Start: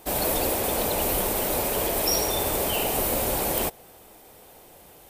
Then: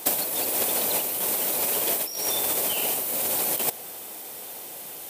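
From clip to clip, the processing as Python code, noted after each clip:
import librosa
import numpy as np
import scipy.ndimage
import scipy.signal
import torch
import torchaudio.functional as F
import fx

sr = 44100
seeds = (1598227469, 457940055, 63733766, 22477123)

y = scipy.signal.sosfilt(scipy.signal.butter(2, 160.0, 'highpass', fs=sr, output='sos'), x)
y = fx.high_shelf(y, sr, hz=2400.0, db=10.0)
y = fx.over_compress(y, sr, threshold_db=-23.0, ratio=-0.5)
y = y * librosa.db_to_amplitude(-1.0)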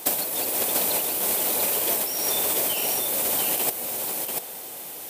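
y = x + 10.0 ** (-4.0 / 20.0) * np.pad(x, (int(689 * sr / 1000.0), 0))[:len(x)]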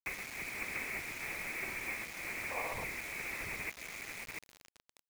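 y = fx.freq_invert(x, sr, carrier_hz=2800)
y = fx.spec_box(y, sr, start_s=2.51, length_s=0.33, low_hz=440.0, high_hz=1200.0, gain_db=12)
y = fx.quant_dither(y, sr, seeds[0], bits=6, dither='none')
y = y * librosa.db_to_amplitude(-9.0)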